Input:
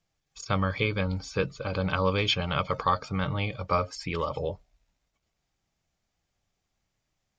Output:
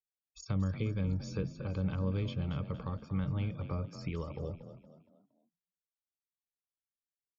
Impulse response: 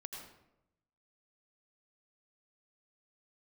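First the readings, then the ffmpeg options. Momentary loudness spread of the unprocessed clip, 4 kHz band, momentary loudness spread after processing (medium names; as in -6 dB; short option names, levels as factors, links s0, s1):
6 LU, -19.5 dB, 8 LU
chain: -filter_complex "[0:a]aresample=16000,aresample=44100,afftdn=nr=34:nf=-50,acrossover=split=380[s0][s1];[s1]acompressor=threshold=0.01:ratio=8[s2];[s0][s2]amix=inputs=2:normalize=0,lowshelf=f=310:g=4.5,asplit=2[s3][s4];[s4]asplit=4[s5][s6][s7][s8];[s5]adelay=233,afreqshift=35,volume=0.251[s9];[s6]adelay=466,afreqshift=70,volume=0.0977[s10];[s7]adelay=699,afreqshift=105,volume=0.038[s11];[s8]adelay=932,afreqshift=140,volume=0.015[s12];[s9][s10][s11][s12]amix=inputs=4:normalize=0[s13];[s3][s13]amix=inputs=2:normalize=0,volume=0.473"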